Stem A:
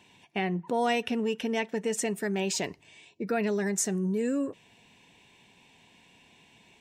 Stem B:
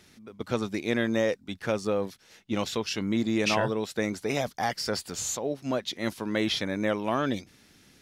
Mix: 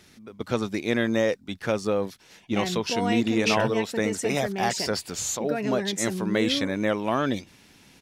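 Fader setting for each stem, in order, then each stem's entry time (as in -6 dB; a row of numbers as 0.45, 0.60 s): -1.5, +2.5 dB; 2.20, 0.00 s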